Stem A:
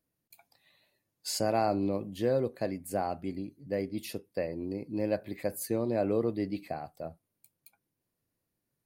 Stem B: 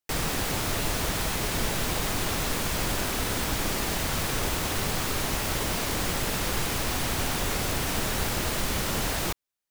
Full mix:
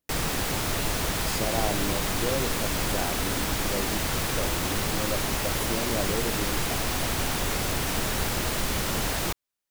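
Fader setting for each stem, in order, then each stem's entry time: −2.5, +0.5 decibels; 0.00, 0.00 seconds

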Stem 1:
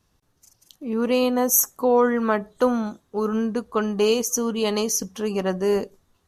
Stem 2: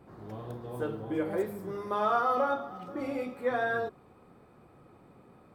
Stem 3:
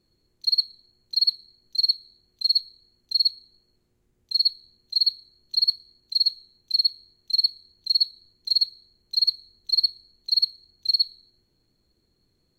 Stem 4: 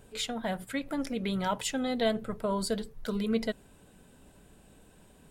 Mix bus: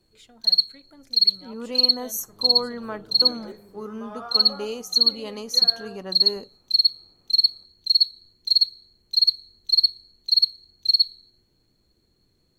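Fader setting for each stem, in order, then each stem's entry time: −11.5, −11.0, +3.0, −18.0 decibels; 0.60, 2.10, 0.00, 0.00 seconds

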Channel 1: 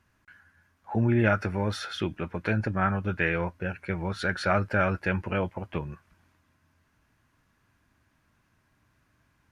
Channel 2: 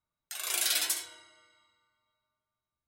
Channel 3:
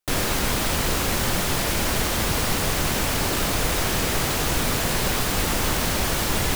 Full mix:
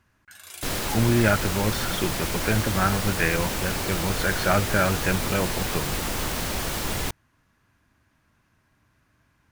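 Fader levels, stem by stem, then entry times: +2.5, −10.0, −5.0 decibels; 0.00, 0.00, 0.55 seconds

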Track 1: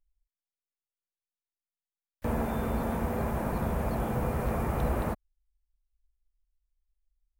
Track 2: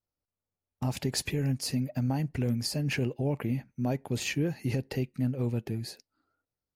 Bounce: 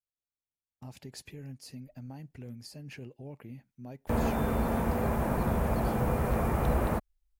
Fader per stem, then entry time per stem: +1.5, −15.0 decibels; 1.85, 0.00 seconds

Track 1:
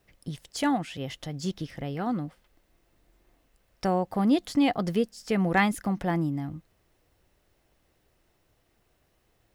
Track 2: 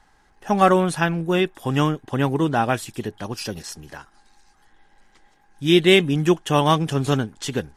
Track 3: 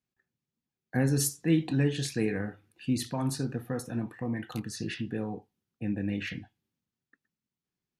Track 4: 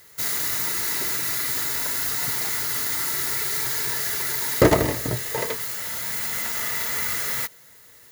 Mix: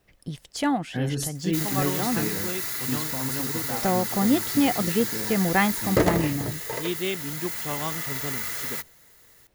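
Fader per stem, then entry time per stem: +1.5, −14.5, −2.0, −5.0 decibels; 0.00, 1.15, 0.00, 1.35 seconds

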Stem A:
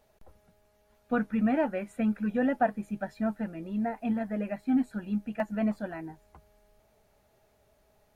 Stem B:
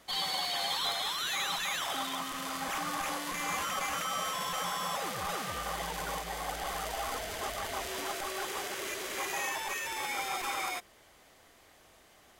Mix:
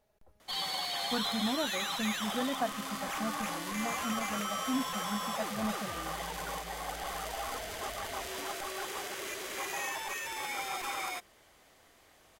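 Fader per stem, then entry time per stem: −7.5, −2.0 decibels; 0.00, 0.40 seconds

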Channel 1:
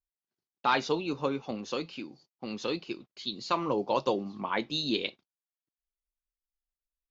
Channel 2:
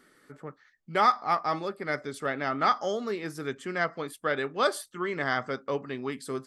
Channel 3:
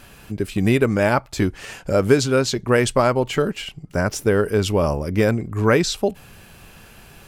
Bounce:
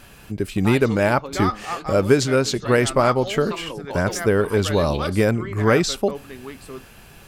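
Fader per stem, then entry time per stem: −5.0, −3.0, −0.5 decibels; 0.00, 0.40, 0.00 seconds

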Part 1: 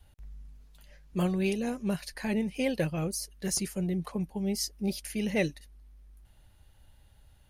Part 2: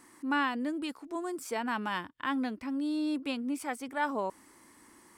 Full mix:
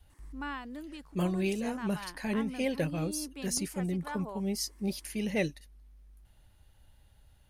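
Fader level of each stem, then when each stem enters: −2.0, −9.5 decibels; 0.00, 0.10 seconds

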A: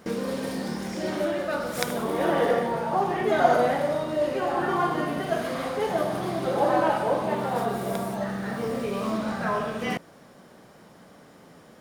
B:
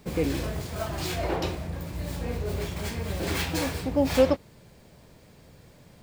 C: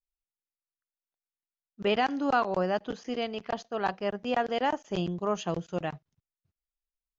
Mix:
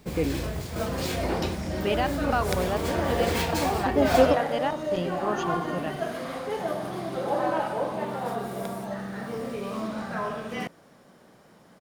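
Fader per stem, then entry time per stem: −4.0, 0.0, −1.0 decibels; 0.70, 0.00, 0.00 seconds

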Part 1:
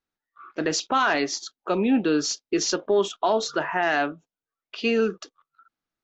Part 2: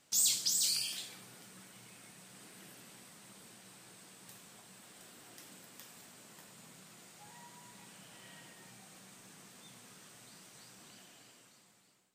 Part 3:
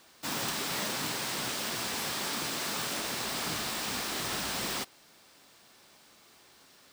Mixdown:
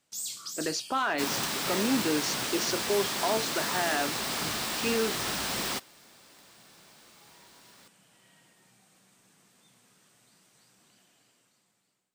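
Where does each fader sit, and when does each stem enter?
−7.0, −7.0, +2.0 decibels; 0.00, 0.00, 0.95 seconds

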